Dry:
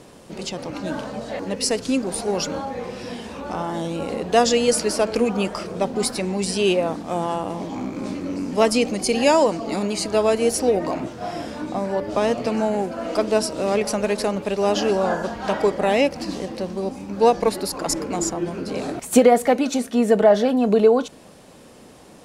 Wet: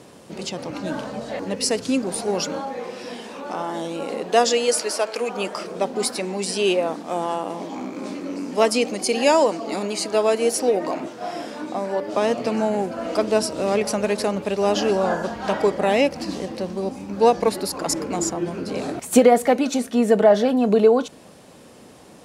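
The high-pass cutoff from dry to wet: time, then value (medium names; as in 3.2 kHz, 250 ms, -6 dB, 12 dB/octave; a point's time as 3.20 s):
2.06 s 84 Hz
2.80 s 260 Hz
4.30 s 260 Hz
5.15 s 630 Hz
5.55 s 250 Hz
12.03 s 250 Hz
13.00 s 63 Hz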